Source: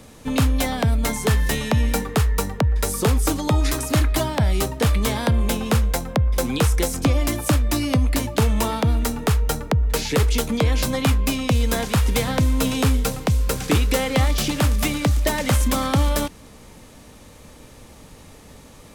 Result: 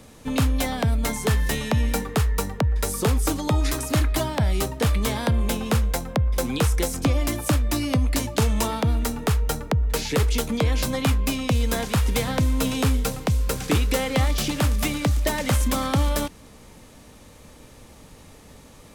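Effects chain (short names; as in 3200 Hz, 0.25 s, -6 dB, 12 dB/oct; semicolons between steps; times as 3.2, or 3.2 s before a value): 7.99–8.67 dynamic EQ 6400 Hz, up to +4 dB, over -42 dBFS, Q 0.82; gain -2.5 dB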